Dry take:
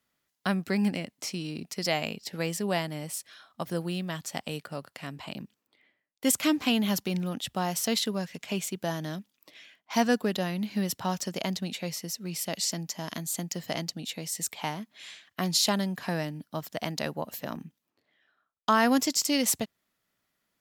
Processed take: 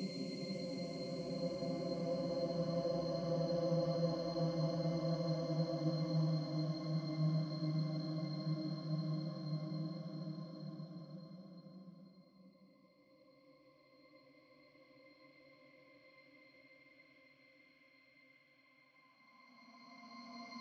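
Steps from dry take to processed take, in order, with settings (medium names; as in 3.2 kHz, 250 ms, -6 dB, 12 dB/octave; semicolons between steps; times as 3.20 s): resonant high shelf 3.5 kHz +10 dB, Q 1.5; pitch-class resonator C, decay 0.12 s; level-controlled noise filter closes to 2.4 kHz, open at -33 dBFS; Paulstretch 18×, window 0.50 s, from 8.67 s; trim +6 dB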